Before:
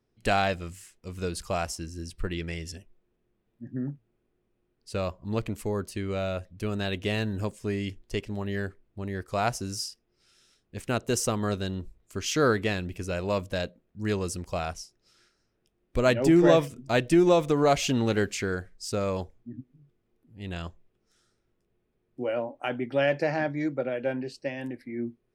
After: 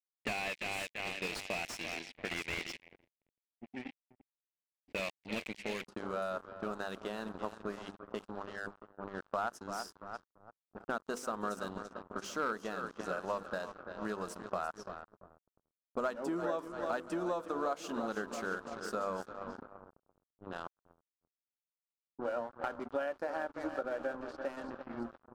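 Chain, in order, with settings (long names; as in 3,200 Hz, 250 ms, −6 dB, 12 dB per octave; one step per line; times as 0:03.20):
linear-phase brick-wall high-pass 180 Hz
repeating echo 339 ms, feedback 59%, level −11.5 dB
dynamic equaliser 330 Hz, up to −6 dB, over −39 dBFS, Q 0.91
mains-hum notches 50/100/150/200/250/300/350/400/450/500 Hz
dead-zone distortion −41.5 dBFS
downward compressor 8 to 1, threshold −35 dBFS, peak gain reduction 16.5 dB
low-pass that shuts in the quiet parts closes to 450 Hz, open at −37.5 dBFS
high shelf with overshoot 1,700 Hz +8.5 dB, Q 3, from 0:05.85 −7 dB
slew-rate limiting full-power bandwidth 36 Hz
level +2 dB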